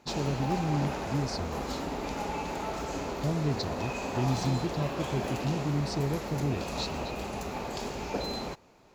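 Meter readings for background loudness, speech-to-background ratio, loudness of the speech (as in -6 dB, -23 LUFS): -35.0 LUFS, 2.0 dB, -33.0 LUFS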